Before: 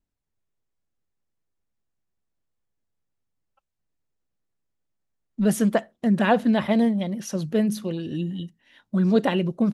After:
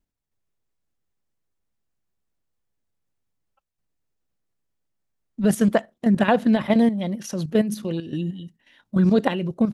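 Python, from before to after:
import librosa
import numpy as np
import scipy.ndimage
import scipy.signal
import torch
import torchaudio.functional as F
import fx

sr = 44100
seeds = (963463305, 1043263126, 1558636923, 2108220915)

y = fx.level_steps(x, sr, step_db=10)
y = y * 10.0 ** (4.5 / 20.0)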